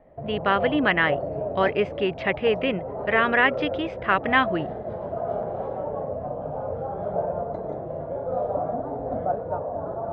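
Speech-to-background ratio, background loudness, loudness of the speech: 7.0 dB, -30.5 LUFS, -23.5 LUFS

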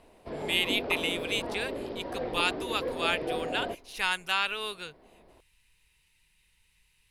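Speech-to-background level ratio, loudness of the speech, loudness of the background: 5.0 dB, -30.5 LUFS, -35.5 LUFS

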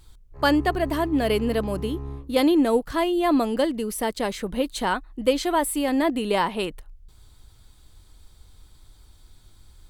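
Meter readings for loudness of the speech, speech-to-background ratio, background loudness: -24.0 LUFS, 12.0 dB, -36.0 LUFS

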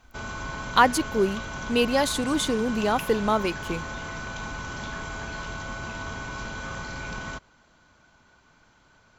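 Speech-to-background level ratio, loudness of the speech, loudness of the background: 10.0 dB, -24.5 LUFS, -34.5 LUFS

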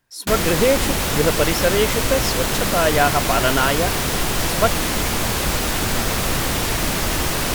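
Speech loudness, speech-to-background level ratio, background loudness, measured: -21.0 LUFS, -0.5 dB, -20.5 LUFS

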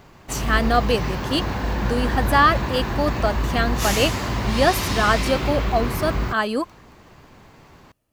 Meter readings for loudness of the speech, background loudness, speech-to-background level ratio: -22.5 LUFS, -25.0 LUFS, 2.5 dB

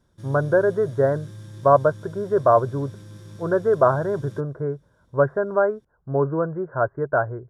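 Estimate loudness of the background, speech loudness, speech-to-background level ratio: -41.5 LUFS, -22.0 LUFS, 19.5 dB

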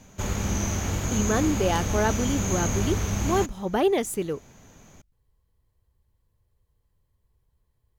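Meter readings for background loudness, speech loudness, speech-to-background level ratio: -28.0 LUFS, -27.0 LUFS, 1.0 dB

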